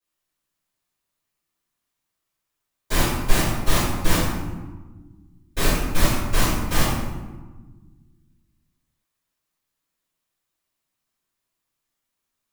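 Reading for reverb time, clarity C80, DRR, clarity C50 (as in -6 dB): 1.3 s, 2.0 dB, -16.0 dB, -0.5 dB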